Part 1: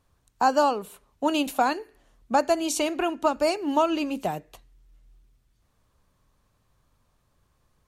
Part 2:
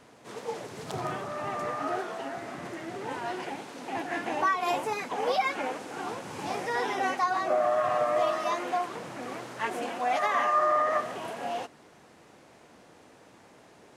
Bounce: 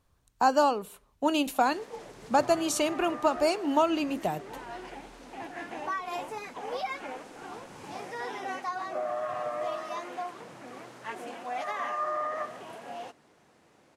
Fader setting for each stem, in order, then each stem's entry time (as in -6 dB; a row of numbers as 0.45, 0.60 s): -2.0, -7.0 dB; 0.00, 1.45 s